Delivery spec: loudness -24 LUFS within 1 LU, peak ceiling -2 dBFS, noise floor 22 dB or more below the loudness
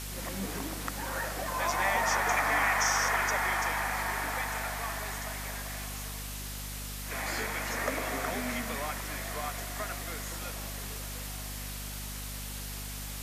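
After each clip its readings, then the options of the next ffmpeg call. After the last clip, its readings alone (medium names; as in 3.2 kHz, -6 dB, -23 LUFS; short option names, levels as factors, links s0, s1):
hum 50 Hz; highest harmonic 250 Hz; hum level -39 dBFS; noise floor -39 dBFS; noise floor target -54 dBFS; loudness -32.0 LUFS; peak level -14.0 dBFS; loudness target -24.0 LUFS
-> -af "bandreject=f=50:t=h:w=4,bandreject=f=100:t=h:w=4,bandreject=f=150:t=h:w=4,bandreject=f=200:t=h:w=4,bandreject=f=250:t=h:w=4"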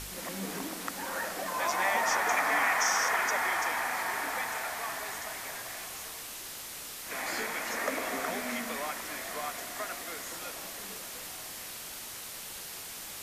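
hum not found; noise floor -43 dBFS; noise floor target -55 dBFS
-> -af "afftdn=nr=12:nf=-43"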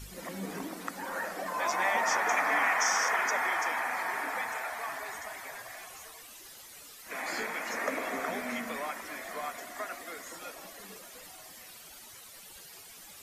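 noise floor -50 dBFS; noise floor target -54 dBFS
-> -af "afftdn=nr=6:nf=-50"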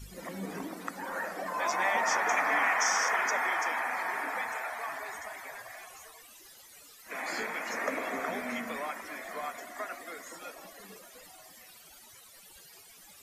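noise floor -54 dBFS; loudness -32.0 LUFS; peak level -14.5 dBFS; loudness target -24.0 LUFS
-> -af "volume=2.51"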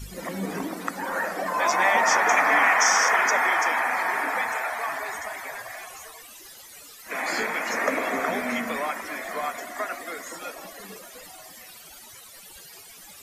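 loudness -24.0 LUFS; peak level -6.5 dBFS; noise floor -46 dBFS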